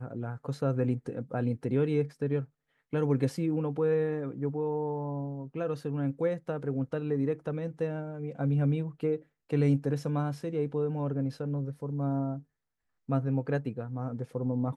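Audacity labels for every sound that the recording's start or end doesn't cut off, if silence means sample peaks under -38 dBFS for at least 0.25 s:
2.930000	9.170000	sound
9.510000	12.390000	sound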